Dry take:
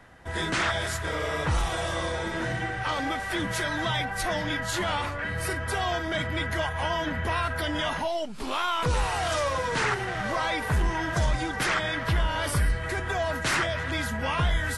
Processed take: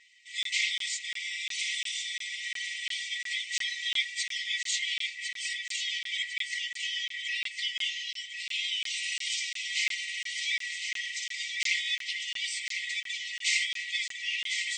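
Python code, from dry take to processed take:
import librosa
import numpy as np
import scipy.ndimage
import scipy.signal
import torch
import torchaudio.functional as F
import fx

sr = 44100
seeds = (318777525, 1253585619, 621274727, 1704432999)

y = x + 0.99 * np.pad(x, (int(4.3 * sr / 1000.0), 0))[:len(x)]
y = np.clip(y, -10.0 ** (-14.5 / 20.0), 10.0 ** (-14.5 / 20.0))
y = fx.brickwall_bandpass(y, sr, low_hz=1900.0, high_hz=8600.0)
y = fx.echo_feedback(y, sr, ms=1053, feedback_pct=41, wet_db=-7.0)
y = fx.buffer_crackle(y, sr, first_s=0.43, period_s=0.35, block=1024, kind='zero')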